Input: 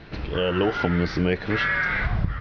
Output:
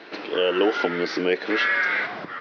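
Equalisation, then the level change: HPF 300 Hz 24 dB/oct; dynamic EQ 1100 Hz, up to -4 dB, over -34 dBFS, Q 0.74; +4.5 dB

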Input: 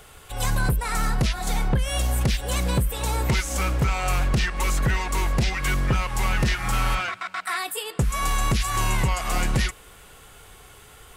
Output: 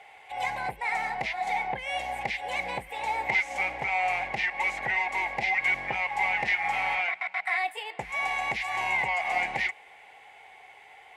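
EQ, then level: double band-pass 1300 Hz, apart 1.4 oct; bell 1300 Hz +7.5 dB 0.44 oct; +8.0 dB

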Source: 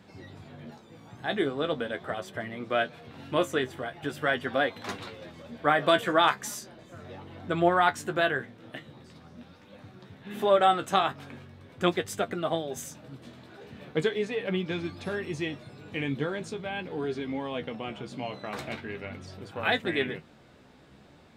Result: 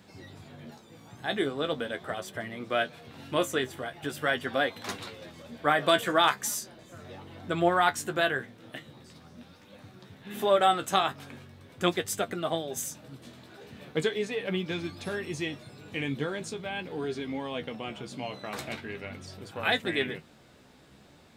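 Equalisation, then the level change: high shelf 4900 Hz +10 dB; -1.5 dB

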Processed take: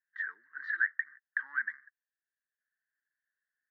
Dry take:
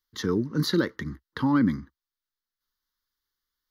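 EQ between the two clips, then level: Butterworth band-pass 1700 Hz, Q 5.8; +9.0 dB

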